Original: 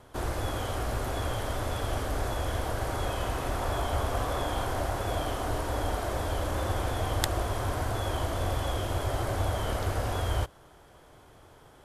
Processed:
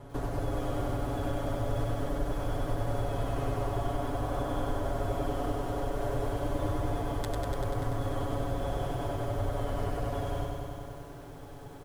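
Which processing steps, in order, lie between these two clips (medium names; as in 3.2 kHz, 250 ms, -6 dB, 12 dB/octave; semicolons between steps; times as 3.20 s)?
tilt shelf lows +6.5 dB; comb 7.1 ms, depth 91%; compression 6:1, threshold -31 dBFS, peak gain reduction 13 dB; bit-crushed delay 97 ms, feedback 80%, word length 10-bit, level -3.5 dB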